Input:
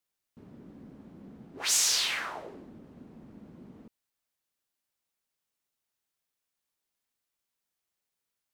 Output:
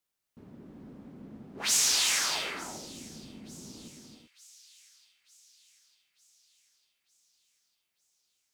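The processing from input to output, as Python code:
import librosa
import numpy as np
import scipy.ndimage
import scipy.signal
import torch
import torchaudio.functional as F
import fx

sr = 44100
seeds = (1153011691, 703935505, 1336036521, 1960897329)

p1 = x + fx.echo_wet_highpass(x, sr, ms=900, feedback_pct=56, hz=3100.0, wet_db=-20.0, dry=0)
y = fx.rev_gated(p1, sr, seeds[0], gate_ms=410, shape='rising', drr_db=3.5)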